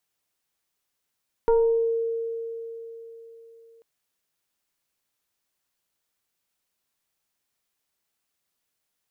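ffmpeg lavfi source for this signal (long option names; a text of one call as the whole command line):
ffmpeg -f lavfi -i "aevalsrc='0.178*pow(10,-3*t/3.85)*sin(2*PI*458*t+0.79*pow(10,-3*t/0.71)*sin(2*PI*1.03*458*t))':duration=2.34:sample_rate=44100" out.wav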